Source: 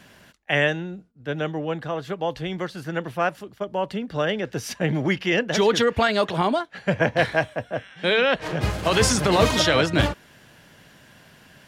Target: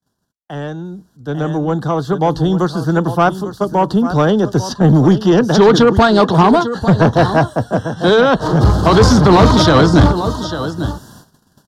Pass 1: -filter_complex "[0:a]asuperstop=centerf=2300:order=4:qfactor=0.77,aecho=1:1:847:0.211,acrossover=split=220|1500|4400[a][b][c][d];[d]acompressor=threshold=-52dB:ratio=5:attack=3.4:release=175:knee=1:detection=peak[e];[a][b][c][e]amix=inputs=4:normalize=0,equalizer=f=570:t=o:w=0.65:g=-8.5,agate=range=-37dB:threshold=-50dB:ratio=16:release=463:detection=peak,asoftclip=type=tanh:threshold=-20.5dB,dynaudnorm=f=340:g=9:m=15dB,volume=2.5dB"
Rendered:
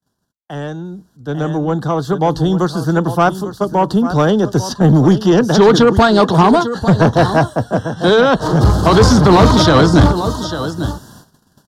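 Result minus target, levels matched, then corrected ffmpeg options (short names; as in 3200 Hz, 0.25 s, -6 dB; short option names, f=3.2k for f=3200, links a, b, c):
compressor: peak gain reduction -5 dB
-filter_complex "[0:a]asuperstop=centerf=2300:order=4:qfactor=0.77,aecho=1:1:847:0.211,acrossover=split=220|1500|4400[a][b][c][d];[d]acompressor=threshold=-58.5dB:ratio=5:attack=3.4:release=175:knee=1:detection=peak[e];[a][b][c][e]amix=inputs=4:normalize=0,equalizer=f=570:t=o:w=0.65:g=-8.5,agate=range=-37dB:threshold=-50dB:ratio=16:release=463:detection=peak,asoftclip=type=tanh:threshold=-20.5dB,dynaudnorm=f=340:g=9:m=15dB,volume=2.5dB"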